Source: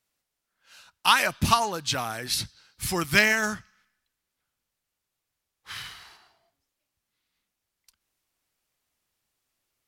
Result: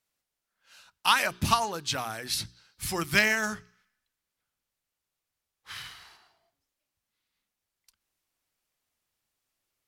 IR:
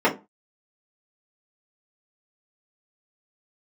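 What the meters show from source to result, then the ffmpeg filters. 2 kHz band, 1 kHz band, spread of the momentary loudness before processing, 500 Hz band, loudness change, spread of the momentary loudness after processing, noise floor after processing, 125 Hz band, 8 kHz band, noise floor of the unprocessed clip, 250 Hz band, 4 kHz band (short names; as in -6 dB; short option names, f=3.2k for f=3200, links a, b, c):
-3.0 dB, -3.0 dB, 19 LU, -3.5 dB, -3.0 dB, 19 LU, under -85 dBFS, -3.5 dB, -3.0 dB, -84 dBFS, -3.5 dB, -3.0 dB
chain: -af "bandreject=f=60:t=h:w=6,bandreject=f=120:t=h:w=6,bandreject=f=180:t=h:w=6,bandreject=f=240:t=h:w=6,bandreject=f=300:t=h:w=6,bandreject=f=360:t=h:w=6,bandreject=f=420:t=h:w=6,volume=-3dB"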